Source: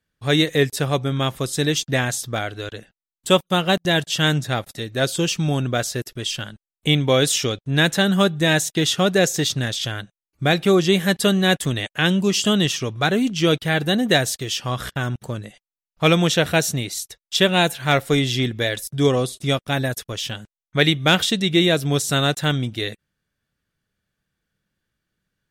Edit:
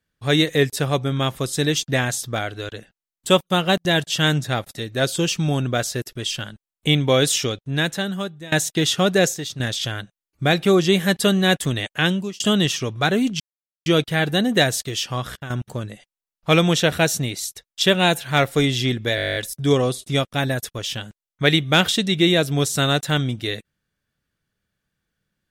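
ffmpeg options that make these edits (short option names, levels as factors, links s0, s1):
-filter_complex "[0:a]asplit=17[s0][s1][s2][s3][s4][s5][s6][s7][s8][s9][s10][s11][s12][s13][s14][s15][s16];[s0]atrim=end=8.52,asetpts=PTS-STARTPTS,afade=t=out:st=7.33:d=1.19:silence=0.0749894[s17];[s1]atrim=start=8.52:end=9.342,asetpts=PTS-STARTPTS,afade=t=in:d=0.004:c=hsin:silence=0.0749894[s18];[s2]atrim=start=9.338:end=9.602,asetpts=PTS-STARTPTS,volume=0.376[s19];[s3]atrim=start=9.598:end=12.4,asetpts=PTS-STARTPTS,afade=t=out:st=2.432:d=0.37[s20];[s4]atrim=start=12.4:end=13.4,asetpts=PTS-STARTPTS,afade=t=in:d=0.004:c=hsin,afade=t=out:st=0.996:d=0.004:c=hsin,apad=pad_dur=0.46[s21];[s5]atrim=start=13.4:end=15.04,asetpts=PTS-STARTPTS,afade=t=in:d=0.004:c=hsin,afade=t=out:st=1.13:d=0.51:c=qsin:silence=0.266073[s22];[s6]atrim=start=15.04:end=18.722,asetpts=PTS-STARTPTS,afade=t=in:d=0.004:c=hsin:silence=0.266073[s23];[s7]atrim=start=18.698:end=18.722[s24];[s8]atrim=start=18.698:end=18.722[s25];[s9]atrim=start=18.698:end=18.722[s26];[s10]atrim=start=18.698:end=18.722[s27];[s11]atrim=start=18.698:end=18.722[s28];[s12]atrim=start=18.698:end=18.722[s29];[s13]atrim=start=18.698:end=18.722[s30];[s14]atrim=start=18.698:end=18.722[s31];[s15]atrim=start=18.698:end=18.722[s32];[s16]atrim=start=18.698[s33];[s17][s18]concat=n=2:v=0:a=1[s34];[s34][s19]acrossfade=d=0.004:c1=hsin:c2=hsin[s35];[s20][s21][s22][s23]concat=n=4:v=0:a=1[s36];[s35][s36]acrossfade=d=0.004:c1=hsin:c2=hsin[s37];[s37][s24]acrossfade=d=0.004:c1=hsin:c2=hsin[s38];[s38][s25]acrossfade=d=0.004:c1=hsin:c2=hsin[s39];[s39][s26]acrossfade=d=0.004:c1=hsin:c2=hsin[s40];[s40][s27]acrossfade=d=0.004:c1=hsin:c2=hsin[s41];[s41][s28]acrossfade=d=0.004:c1=hsin:c2=hsin[s42];[s42][s29]acrossfade=d=0.004:c1=hsin:c2=hsin[s43];[s43][s30]acrossfade=d=0.004:c1=hsin:c2=hsin[s44];[s44][s31]acrossfade=d=0.004:c1=hsin:c2=hsin[s45];[s45][s32]acrossfade=d=0.004:c1=hsin:c2=hsin[s46];[s46][s33]acrossfade=d=0.004:c1=hsin:c2=hsin"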